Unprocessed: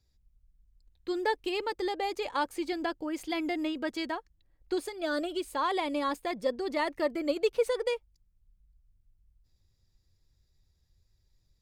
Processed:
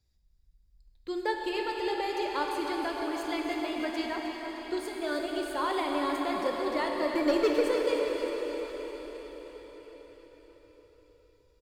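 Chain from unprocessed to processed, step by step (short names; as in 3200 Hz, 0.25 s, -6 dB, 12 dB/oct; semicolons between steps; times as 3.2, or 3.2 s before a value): 7.14–7.6 sample leveller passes 2; feedback echo 0.308 s, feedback 55%, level -10 dB; reverb RT60 5.7 s, pre-delay 7 ms, DRR 0 dB; gain -2.5 dB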